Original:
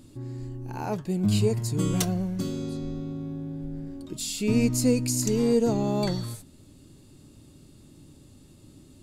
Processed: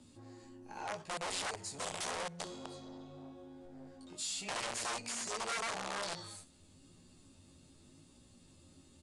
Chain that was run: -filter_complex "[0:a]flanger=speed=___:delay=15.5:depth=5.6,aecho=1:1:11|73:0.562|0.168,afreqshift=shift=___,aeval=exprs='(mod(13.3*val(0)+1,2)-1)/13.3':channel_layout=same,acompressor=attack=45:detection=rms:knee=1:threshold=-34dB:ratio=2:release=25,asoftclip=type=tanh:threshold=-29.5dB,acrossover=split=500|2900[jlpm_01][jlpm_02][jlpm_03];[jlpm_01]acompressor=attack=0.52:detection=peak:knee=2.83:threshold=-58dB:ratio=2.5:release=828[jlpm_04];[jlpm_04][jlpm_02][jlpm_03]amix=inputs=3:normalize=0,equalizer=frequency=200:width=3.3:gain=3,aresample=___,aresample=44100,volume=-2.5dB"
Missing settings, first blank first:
0.85, -13, 22050